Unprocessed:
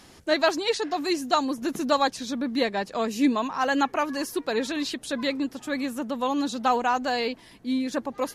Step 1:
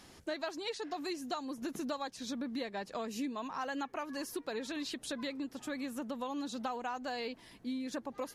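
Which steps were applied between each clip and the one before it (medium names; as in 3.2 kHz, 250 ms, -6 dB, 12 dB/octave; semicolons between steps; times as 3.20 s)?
compression, threshold -30 dBFS, peak gain reduction 13 dB; trim -5.5 dB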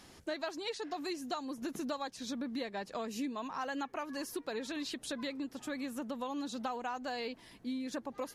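no audible change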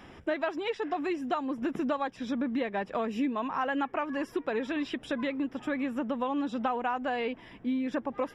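Savitzky-Golay filter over 25 samples; trim +8 dB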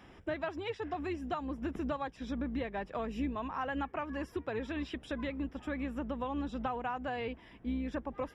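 octave divider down 2 oct, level -5 dB; trim -6 dB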